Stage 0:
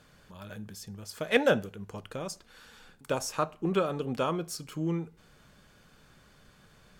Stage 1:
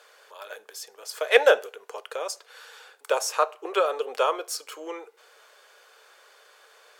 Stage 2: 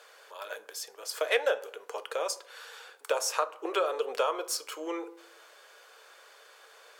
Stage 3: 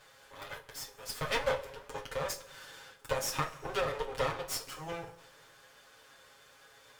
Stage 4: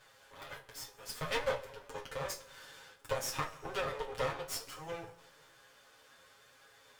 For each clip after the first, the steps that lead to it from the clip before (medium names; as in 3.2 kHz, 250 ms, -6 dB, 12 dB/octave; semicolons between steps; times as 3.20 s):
elliptic high-pass 440 Hz, stop band 60 dB; trim +7.5 dB
compression 4:1, threshold -25 dBFS, peak gain reduction 12.5 dB; on a send at -12.5 dB: reverberation RT60 0.65 s, pre-delay 3 ms
comb filter that takes the minimum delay 7.3 ms; two-slope reverb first 0.22 s, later 2.1 s, from -21 dB, DRR 4.5 dB; trim -3.5 dB
flange 0.61 Hz, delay 7.7 ms, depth 9.6 ms, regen +48%; trim +1 dB